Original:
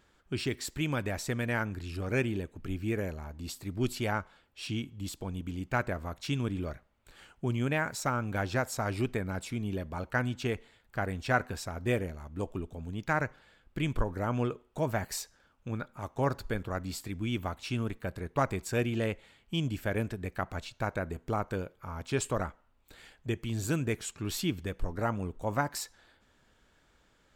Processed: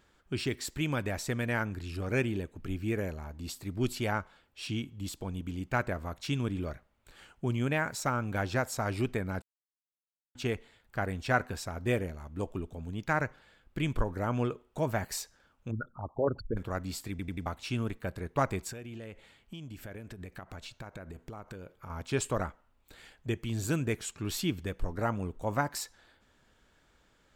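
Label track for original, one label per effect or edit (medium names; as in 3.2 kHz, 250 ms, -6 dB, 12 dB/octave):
9.420000	10.350000	mute
15.710000	16.570000	resonances exaggerated exponent 3
17.100000	17.100000	stutter in place 0.09 s, 4 plays
18.720000	21.900000	compression 12:1, threshold -39 dBFS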